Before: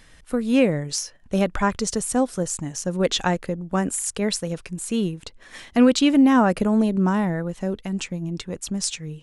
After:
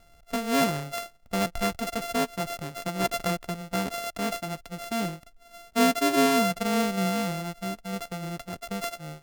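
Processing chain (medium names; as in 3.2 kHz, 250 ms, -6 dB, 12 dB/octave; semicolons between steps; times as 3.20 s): sorted samples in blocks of 64 samples; 5.26–7.96 s: harmonic-percussive split percussive -15 dB; trim -6 dB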